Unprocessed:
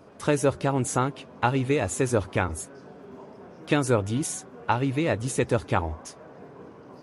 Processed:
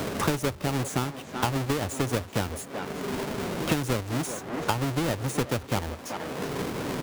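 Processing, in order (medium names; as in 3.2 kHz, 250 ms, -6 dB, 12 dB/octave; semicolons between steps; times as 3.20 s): square wave that keeps the level; speakerphone echo 380 ms, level -11 dB; three bands compressed up and down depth 100%; trim -8 dB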